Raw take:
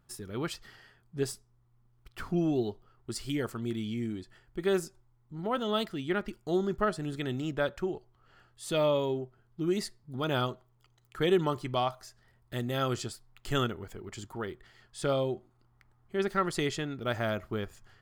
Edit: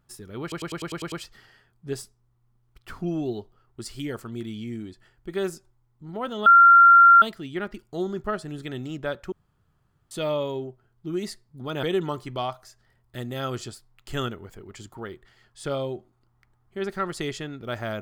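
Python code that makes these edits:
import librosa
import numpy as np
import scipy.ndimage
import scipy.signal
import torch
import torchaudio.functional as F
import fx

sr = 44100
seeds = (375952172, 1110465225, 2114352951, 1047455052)

y = fx.edit(x, sr, fx.stutter(start_s=0.42, slice_s=0.1, count=8),
    fx.insert_tone(at_s=5.76, length_s=0.76, hz=1380.0, db=-9.0),
    fx.room_tone_fill(start_s=7.86, length_s=0.79),
    fx.cut(start_s=10.37, length_s=0.84), tone=tone)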